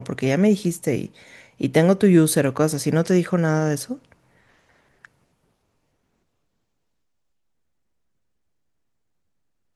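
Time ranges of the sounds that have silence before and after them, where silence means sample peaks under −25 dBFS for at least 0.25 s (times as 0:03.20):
0:01.61–0:03.94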